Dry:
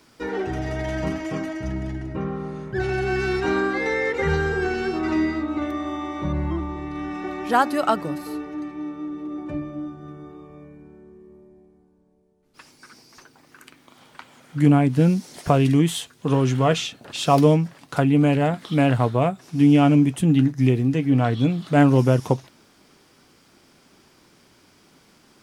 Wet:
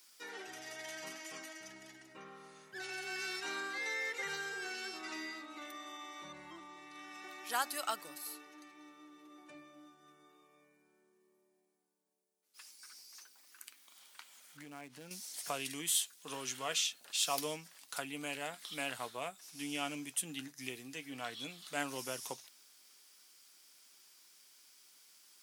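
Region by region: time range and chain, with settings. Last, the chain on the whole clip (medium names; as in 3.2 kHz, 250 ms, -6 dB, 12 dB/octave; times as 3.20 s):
14.57–15.11 s: dead-time distortion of 0.058 ms + low-pass 2.2 kHz 6 dB/octave + compression, threshold -20 dBFS
whole clip: high-pass 140 Hz; differentiator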